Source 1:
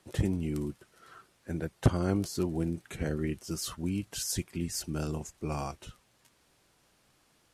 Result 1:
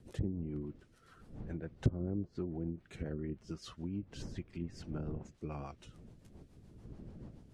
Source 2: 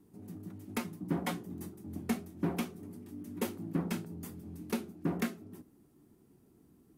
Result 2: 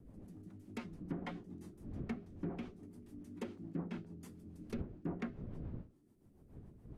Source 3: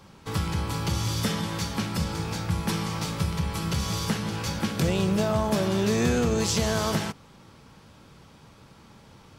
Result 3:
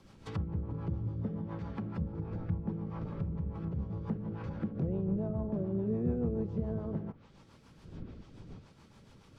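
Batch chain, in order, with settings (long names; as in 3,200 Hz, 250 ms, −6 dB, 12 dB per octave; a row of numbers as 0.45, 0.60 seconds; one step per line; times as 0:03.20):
wind on the microphone 190 Hz −45 dBFS
rotating-speaker cabinet horn 7 Hz
treble cut that deepens with the level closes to 490 Hz, closed at −26 dBFS
level −6 dB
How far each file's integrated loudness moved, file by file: −8.0, −8.0, −9.5 LU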